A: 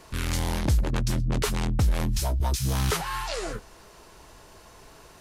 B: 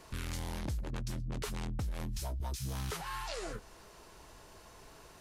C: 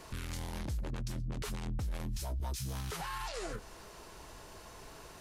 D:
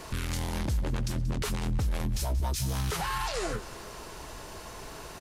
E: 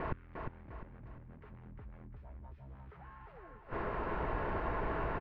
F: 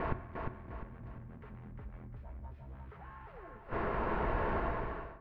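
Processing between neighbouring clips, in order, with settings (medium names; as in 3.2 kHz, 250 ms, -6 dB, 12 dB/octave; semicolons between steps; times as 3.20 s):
compression 3:1, threshold -32 dBFS, peak gain reduction 10 dB; trim -5 dB
peak limiter -34.5 dBFS, peak gain reduction 9 dB; trim +4 dB
feedback delay 182 ms, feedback 57%, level -16.5 dB; trim +8 dB
inverted gate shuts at -27 dBFS, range -29 dB; inverse Chebyshev low-pass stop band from 10 kHz, stop band 80 dB; feedback delay 352 ms, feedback 40%, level -4.5 dB; trim +6.5 dB
fade out at the end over 0.67 s; on a send at -10 dB: reverberation RT60 1.2 s, pre-delay 4 ms; on the sum: trim +2.5 dB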